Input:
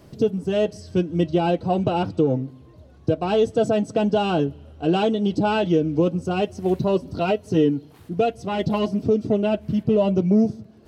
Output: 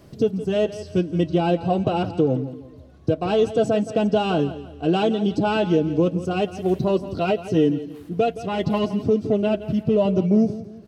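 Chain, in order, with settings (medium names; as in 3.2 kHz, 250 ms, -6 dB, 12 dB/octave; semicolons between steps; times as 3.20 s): band-stop 900 Hz, Q 14; on a send: feedback delay 169 ms, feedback 36%, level -14 dB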